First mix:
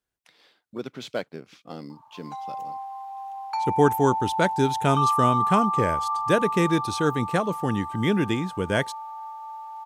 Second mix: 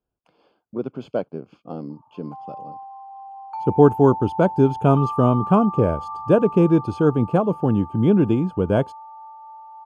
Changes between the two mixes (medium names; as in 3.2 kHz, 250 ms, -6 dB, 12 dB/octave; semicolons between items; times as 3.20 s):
speech +7.0 dB; master: add boxcar filter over 23 samples